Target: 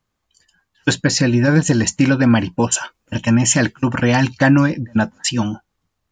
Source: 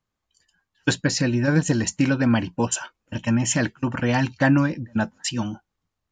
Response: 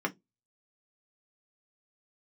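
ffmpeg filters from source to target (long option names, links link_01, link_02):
-filter_complex "[0:a]asettb=1/sr,asplit=3[link_01][link_02][link_03];[link_01]atrim=end=2.744[link_04];[link_02]atrim=start=2.74:end=4.71,asetpts=PTS-STARTPTS,afade=type=in:duration=0.004:curve=qsin,afade=type=out:start_time=1.966:duration=0.004:curve=qsin,highshelf=frequency=6000:gain=5[link_05];[link_03]atrim=start=4.706[link_06];[link_04][link_05]acrossfade=duration=0.004:curve1=hsin:curve2=qsin[link_07];[link_07][link_06]acrossfade=duration=0.004:curve1=qsin:curve2=hsin,asplit=2[link_08][link_09];[link_09]alimiter=limit=-13.5dB:level=0:latency=1:release=100,volume=-1dB[link_10];[link_08][link_10]amix=inputs=2:normalize=0,volume=1.5dB"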